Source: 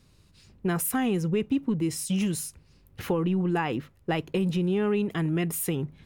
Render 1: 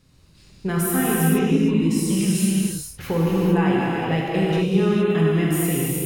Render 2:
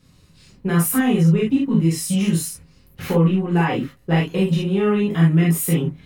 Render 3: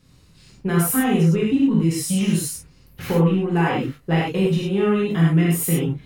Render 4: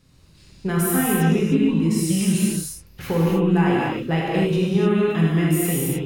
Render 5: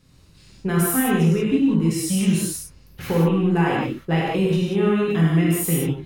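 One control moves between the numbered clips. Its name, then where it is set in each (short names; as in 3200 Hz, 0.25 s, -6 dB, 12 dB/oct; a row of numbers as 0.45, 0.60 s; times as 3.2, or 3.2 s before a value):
non-linear reverb, gate: 490, 90, 140, 330, 210 ms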